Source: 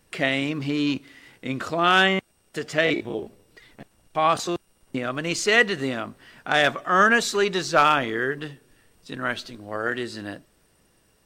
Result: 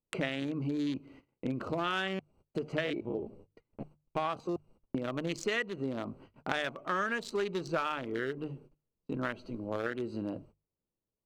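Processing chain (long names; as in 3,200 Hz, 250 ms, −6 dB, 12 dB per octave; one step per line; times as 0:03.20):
adaptive Wiener filter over 25 samples
noise gate −53 dBFS, range −30 dB
notch filter 720 Hz, Q 12
downward compressor 6 to 1, threshold −34 dBFS, peak gain reduction 19.5 dB
mains-hum notches 50/100/150 Hz
level +3 dB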